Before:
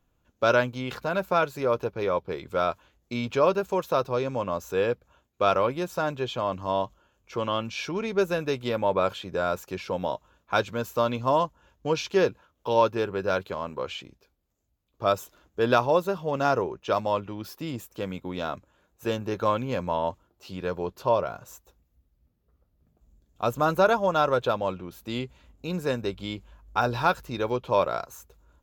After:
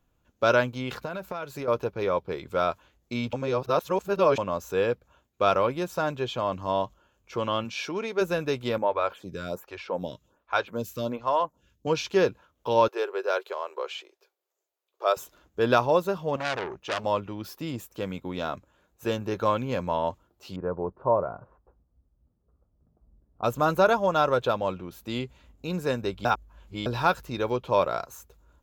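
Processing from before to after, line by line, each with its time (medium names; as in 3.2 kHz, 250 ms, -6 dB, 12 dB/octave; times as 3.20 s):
1.05–1.68 s: compression, threshold -30 dBFS
3.33–4.38 s: reverse
7.64–8.20 s: high-pass 120 Hz -> 380 Hz
8.78–11.87 s: lamp-driven phase shifter 1.3 Hz
12.88–15.17 s: elliptic high-pass 370 Hz
16.36–17.04 s: transformer saturation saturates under 3.8 kHz
20.56–23.44 s: low-pass 1.3 kHz 24 dB/octave
26.25–26.86 s: reverse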